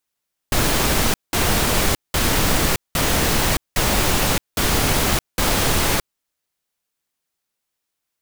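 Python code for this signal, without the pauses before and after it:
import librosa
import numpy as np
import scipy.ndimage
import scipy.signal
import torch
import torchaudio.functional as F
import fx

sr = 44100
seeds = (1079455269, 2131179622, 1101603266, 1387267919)

y = fx.noise_burst(sr, seeds[0], colour='pink', on_s=0.62, off_s=0.19, bursts=7, level_db=-18.0)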